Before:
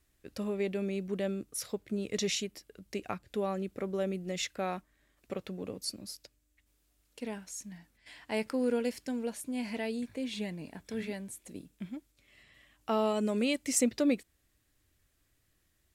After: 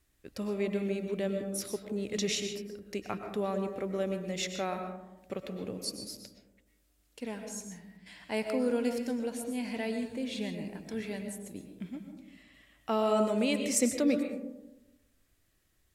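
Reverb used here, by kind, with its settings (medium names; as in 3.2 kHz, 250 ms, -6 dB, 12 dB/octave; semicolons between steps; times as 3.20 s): algorithmic reverb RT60 1 s, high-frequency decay 0.3×, pre-delay 80 ms, DRR 5.5 dB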